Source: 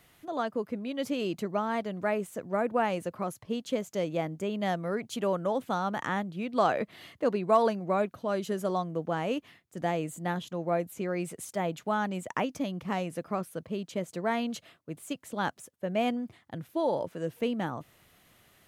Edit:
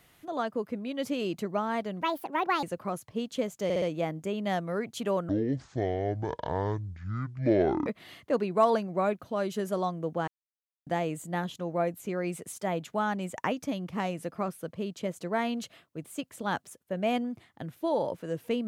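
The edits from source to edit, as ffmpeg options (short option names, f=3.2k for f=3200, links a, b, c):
-filter_complex "[0:a]asplit=10[a][b][c][d][e][f][g][h][i][j];[a]atrim=end=2.024[k];[b]atrim=start=2.02:end=2.97,asetpts=PTS-STARTPTS,asetrate=68796,aresample=44100[l];[c]atrim=start=2.966:end=4.042[m];[d]atrim=start=3.978:end=4.042[n];[e]atrim=start=3.978:end=4.042[o];[f]atrim=start=3.978:end=5.454[p];[g]atrim=start=5.45:end=6.79,asetpts=PTS-STARTPTS,asetrate=22932,aresample=44100,atrim=end_sample=113642,asetpts=PTS-STARTPTS[q];[h]atrim=start=6.786:end=9.2,asetpts=PTS-STARTPTS,afade=t=out:st=2.41:d=0.004:c=hsin[r];[i]atrim=start=9.2:end=9.79,asetpts=PTS-STARTPTS,volume=0[s];[j]atrim=start=9.79,asetpts=PTS-STARTPTS,afade=t=in:d=0.004:c=hsin[t];[k][l]acrossfade=d=0.004:c1=hsin:c2=hsin[u];[u][m]acrossfade=d=0.004:c1=hsin:c2=hsin[v];[v][n]acrossfade=d=0.004:c1=hsin:c2=hsin[w];[w][o]acrossfade=d=0.004:c1=hsin:c2=hsin[x];[x][p]acrossfade=d=0.004:c1=hsin:c2=hsin[y];[y][q]acrossfade=d=0.004:c1=hsin:c2=hsin[z];[r][s][t]concat=n=3:v=0:a=1[aa];[z][aa]acrossfade=d=0.004:c1=hsin:c2=hsin"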